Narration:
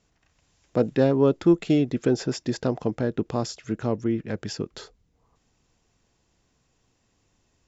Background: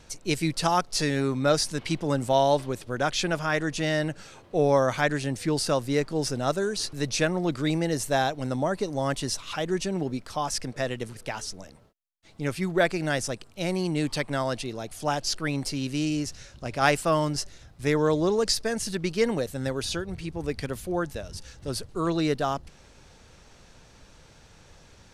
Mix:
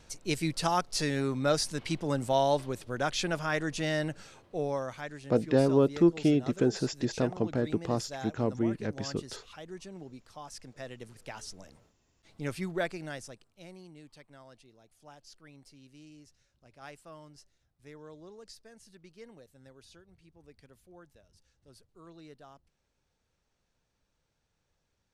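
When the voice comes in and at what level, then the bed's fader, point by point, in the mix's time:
4.55 s, -4.0 dB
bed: 4.24 s -4.5 dB
5.08 s -16.5 dB
10.52 s -16.5 dB
11.73 s -6 dB
12.58 s -6 dB
14.04 s -26 dB

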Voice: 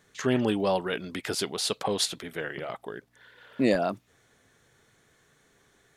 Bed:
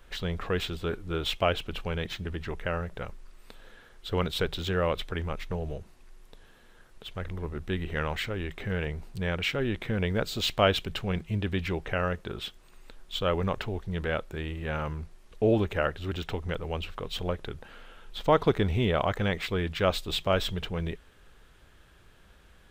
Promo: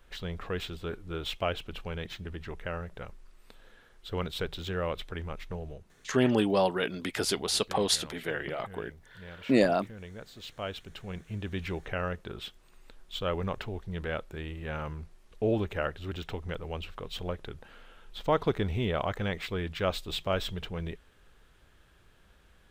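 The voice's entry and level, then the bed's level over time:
5.90 s, +0.5 dB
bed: 5.57 s -5 dB
6.31 s -16.5 dB
10.39 s -16.5 dB
11.68 s -4 dB

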